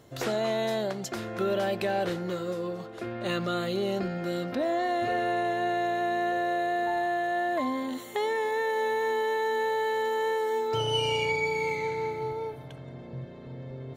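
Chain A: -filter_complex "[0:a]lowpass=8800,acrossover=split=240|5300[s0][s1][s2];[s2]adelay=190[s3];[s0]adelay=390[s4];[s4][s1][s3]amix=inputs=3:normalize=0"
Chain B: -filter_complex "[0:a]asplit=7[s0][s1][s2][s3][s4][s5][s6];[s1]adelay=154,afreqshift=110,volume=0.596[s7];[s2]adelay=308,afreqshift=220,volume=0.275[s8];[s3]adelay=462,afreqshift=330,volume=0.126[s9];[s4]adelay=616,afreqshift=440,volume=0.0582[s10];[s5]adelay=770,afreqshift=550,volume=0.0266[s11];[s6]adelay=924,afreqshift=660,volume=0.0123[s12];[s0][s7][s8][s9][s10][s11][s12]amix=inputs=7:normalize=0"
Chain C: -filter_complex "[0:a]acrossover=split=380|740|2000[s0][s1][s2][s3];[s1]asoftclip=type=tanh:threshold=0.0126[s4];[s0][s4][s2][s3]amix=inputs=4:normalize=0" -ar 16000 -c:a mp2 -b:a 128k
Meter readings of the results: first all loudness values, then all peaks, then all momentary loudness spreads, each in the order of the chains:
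-29.5 LUFS, -27.5 LUFS, -30.5 LUFS; -16.5 dBFS, -14.0 dBFS, -17.0 dBFS; 9 LU, 9 LU, 9 LU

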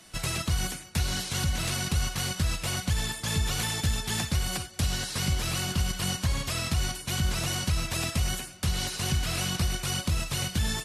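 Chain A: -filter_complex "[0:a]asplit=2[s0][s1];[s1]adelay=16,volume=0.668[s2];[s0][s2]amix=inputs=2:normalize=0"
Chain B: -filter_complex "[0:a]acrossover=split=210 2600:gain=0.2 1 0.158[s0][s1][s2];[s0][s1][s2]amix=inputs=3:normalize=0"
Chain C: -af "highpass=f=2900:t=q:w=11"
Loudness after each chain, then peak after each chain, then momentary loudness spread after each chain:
-27.5 LUFS, -36.5 LUFS, -20.0 LUFS; -13.0 dBFS, -20.5 dBFS, -7.5 dBFS; 2 LU, 2 LU, 5 LU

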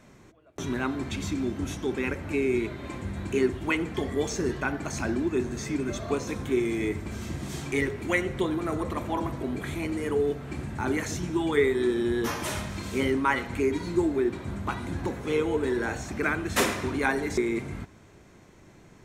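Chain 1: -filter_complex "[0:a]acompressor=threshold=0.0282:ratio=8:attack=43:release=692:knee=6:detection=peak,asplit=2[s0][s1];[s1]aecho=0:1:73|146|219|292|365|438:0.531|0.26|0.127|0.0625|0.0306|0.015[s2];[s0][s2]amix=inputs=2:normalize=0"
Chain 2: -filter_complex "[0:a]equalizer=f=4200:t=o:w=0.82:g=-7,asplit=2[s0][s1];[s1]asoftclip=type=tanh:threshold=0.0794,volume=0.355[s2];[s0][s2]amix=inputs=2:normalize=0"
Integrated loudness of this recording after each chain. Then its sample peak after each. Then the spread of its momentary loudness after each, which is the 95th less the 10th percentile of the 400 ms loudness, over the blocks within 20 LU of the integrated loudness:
-34.0 LUFS, -27.0 LUFS; -17.5 dBFS, -10.0 dBFS; 5 LU, 7 LU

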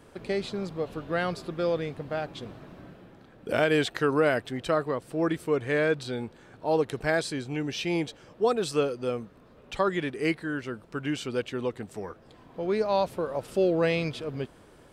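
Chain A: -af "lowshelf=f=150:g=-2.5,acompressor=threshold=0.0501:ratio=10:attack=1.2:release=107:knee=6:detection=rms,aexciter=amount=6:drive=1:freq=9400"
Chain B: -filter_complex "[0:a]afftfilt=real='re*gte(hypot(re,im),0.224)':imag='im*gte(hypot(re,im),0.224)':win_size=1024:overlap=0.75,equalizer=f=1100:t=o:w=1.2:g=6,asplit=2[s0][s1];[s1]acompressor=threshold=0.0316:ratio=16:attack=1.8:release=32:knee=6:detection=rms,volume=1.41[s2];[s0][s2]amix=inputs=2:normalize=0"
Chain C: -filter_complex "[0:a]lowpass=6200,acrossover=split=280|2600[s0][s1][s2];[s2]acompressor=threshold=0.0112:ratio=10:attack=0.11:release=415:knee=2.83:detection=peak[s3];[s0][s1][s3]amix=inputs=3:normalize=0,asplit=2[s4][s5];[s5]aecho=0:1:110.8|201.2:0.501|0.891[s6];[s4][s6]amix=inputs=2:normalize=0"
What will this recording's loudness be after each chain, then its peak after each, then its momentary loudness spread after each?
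-35.0 LUFS, -25.5 LUFS, -26.0 LUFS; -18.5 dBFS, -8.0 dBFS, -9.5 dBFS; 10 LU, 12 LU, 13 LU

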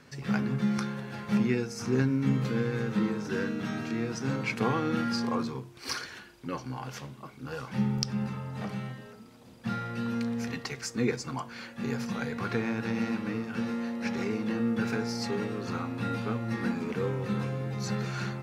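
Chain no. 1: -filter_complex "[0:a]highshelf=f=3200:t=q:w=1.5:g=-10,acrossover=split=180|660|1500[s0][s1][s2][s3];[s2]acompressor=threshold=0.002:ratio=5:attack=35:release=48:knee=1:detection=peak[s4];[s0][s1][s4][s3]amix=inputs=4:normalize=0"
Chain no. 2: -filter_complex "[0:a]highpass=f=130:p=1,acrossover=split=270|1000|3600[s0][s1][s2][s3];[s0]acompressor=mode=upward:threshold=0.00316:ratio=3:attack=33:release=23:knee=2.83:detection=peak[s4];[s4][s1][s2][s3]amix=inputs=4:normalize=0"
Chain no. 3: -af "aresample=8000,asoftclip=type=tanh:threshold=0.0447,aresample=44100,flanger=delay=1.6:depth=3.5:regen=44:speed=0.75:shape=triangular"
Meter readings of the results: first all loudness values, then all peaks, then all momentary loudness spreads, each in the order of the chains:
-32.0 LUFS, -33.0 LUFS, -39.0 LUFS; -15.0 dBFS, -7.0 dBFS, -27.5 dBFS; 11 LU, 10 LU, 9 LU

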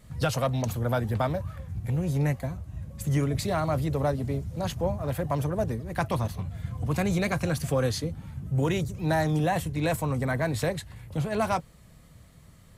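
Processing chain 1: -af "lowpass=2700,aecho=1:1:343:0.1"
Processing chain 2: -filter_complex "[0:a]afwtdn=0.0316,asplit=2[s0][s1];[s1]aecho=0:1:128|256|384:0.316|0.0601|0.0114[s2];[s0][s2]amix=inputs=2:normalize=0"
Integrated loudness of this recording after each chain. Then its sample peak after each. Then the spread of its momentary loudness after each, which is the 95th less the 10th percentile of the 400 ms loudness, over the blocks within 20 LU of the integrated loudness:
-29.0 LUFS, -28.5 LUFS; -15.0 dBFS, -14.0 dBFS; 9 LU, 8 LU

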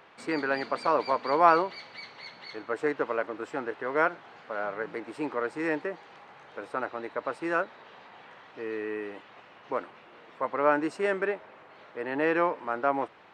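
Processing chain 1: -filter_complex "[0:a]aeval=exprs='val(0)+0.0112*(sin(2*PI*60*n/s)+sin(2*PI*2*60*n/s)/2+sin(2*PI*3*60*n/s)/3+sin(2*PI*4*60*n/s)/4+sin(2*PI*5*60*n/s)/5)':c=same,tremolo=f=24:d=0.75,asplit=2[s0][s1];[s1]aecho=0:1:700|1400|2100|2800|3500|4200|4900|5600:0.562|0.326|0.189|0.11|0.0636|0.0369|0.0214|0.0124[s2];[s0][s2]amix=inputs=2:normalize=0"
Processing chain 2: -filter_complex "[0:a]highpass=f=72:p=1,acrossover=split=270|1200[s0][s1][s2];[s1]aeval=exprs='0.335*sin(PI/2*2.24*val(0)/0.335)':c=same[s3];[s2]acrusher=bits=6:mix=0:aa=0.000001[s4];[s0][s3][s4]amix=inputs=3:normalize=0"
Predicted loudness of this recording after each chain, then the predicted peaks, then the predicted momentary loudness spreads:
-32.0 LUFS, -22.0 LUFS; -6.5 dBFS, -6.5 dBFS; 8 LU, 18 LU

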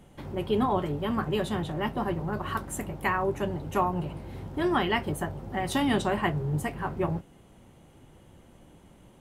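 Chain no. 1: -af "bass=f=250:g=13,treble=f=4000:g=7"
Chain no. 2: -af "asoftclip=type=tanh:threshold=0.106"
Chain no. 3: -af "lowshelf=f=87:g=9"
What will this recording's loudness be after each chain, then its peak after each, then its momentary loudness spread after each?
-23.5 LUFS, -31.0 LUFS, -28.5 LUFS; -8.5 dBFS, -19.5 dBFS, -12.0 dBFS; 6 LU, 7 LU, 7 LU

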